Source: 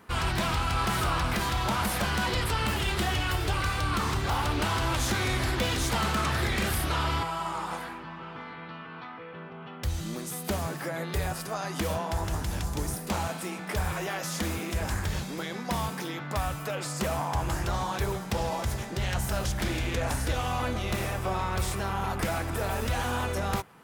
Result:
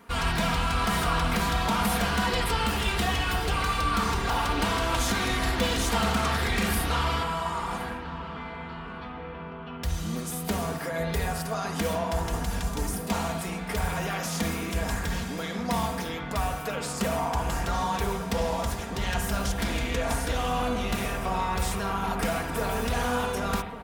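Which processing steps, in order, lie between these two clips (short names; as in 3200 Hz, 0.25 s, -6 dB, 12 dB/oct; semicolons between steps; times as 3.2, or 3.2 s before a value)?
comb 4.3 ms, depth 59%; darkening echo 1.148 s, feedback 60%, low-pass 1600 Hz, level -14 dB; on a send at -6 dB: reverb RT60 0.90 s, pre-delay 48 ms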